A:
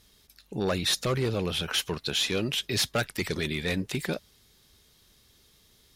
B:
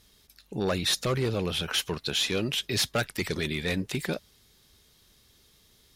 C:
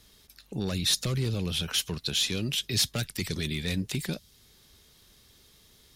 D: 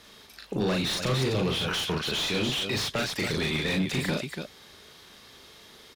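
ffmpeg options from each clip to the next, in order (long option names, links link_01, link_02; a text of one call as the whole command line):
ffmpeg -i in.wav -af anull out.wav
ffmpeg -i in.wav -filter_complex "[0:a]acrossover=split=240|3000[link_01][link_02][link_03];[link_02]acompressor=threshold=-46dB:ratio=2.5[link_04];[link_01][link_04][link_03]amix=inputs=3:normalize=0,volume=2.5dB" out.wav
ffmpeg -i in.wav -filter_complex "[0:a]aecho=1:1:37.9|285.7:0.708|0.355,asplit=2[link_01][link_02];[link_02]highpass=frequency=720:poles=1,volume=25dB,asoftclip=type=tanh:threshold=-11dB[link_03];[link_01][link_03]amix=inputs=2:normalize=0,lowpass=frequency=1400:poles=1,volume=-6dB,volume=-3.5dB" out.wav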